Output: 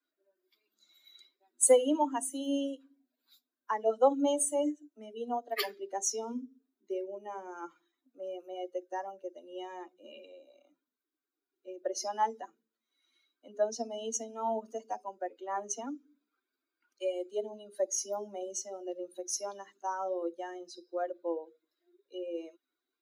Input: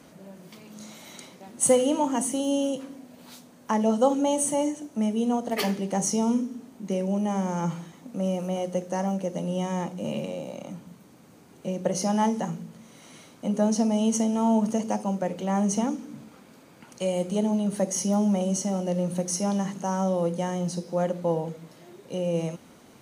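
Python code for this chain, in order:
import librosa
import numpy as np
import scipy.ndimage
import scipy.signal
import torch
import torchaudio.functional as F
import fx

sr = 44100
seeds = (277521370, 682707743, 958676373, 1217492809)

y = fx.bin_expand(x, sr, power=2.0)
y = scipy.signal.sosfilt(scipy.signal.butter(12, 270.0, 'highpass', fs=sr, output='sos'), y)
y = fx.peak_eq(y, sr, hz=2600.0, db=-4.5, octaves=0.29)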